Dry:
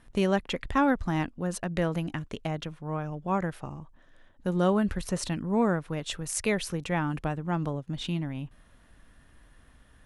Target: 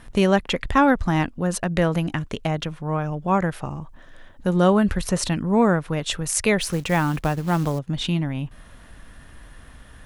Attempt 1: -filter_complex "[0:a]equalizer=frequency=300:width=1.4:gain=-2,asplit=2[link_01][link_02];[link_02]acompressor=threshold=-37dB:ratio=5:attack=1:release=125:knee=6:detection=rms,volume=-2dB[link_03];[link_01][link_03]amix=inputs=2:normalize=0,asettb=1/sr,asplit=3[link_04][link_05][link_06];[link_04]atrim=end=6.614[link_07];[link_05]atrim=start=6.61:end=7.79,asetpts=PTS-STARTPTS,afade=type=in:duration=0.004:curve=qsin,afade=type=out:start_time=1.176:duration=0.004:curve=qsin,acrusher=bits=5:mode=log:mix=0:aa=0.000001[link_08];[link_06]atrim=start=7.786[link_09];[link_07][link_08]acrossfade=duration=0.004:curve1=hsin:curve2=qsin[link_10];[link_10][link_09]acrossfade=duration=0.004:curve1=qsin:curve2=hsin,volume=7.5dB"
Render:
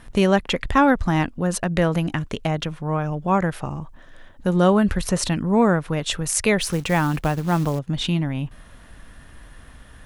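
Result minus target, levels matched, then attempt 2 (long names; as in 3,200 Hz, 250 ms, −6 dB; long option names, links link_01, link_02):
downward compressor: peak gain reduction −7.5 dB
-filter_complex "[0:a]equalizer=frequency=300:width=1.4:gain=-2,asplit=2[link_01][link_02];[link_02]acompressor=threshold=-46.5dB:ratio=5:attack=1:release=125:knee=6:detection=rms,volume=-2dB[link_03];[link_01][link_03]amix=inputs=2:normalize=0,asettb=1/sr,asplit=3[link_04][link_05][link_06];[link_04]atrim=end=6.614[link_07];[link_05]atrim=start=6.61:end=7.79,asetpts=PTS-STARTPTS,afade=type=in:duration=0.004:curve=qsin,afade=type=out:start_time=1.176:duration=0.004:curve=qsin,acrusher=bits=5:mode=log:mix=0:aa=0.000001[link_08];[link_06]atrim=start=7.786[link_09];[link_07][link_08]acrossfade=duration=0.004:curve1=hsin:curve2=qsin[link_10];[link_10][link_09]acrossfade=duration=0.004:curve1=qsin:curve2=hsin,volume=7.5dB"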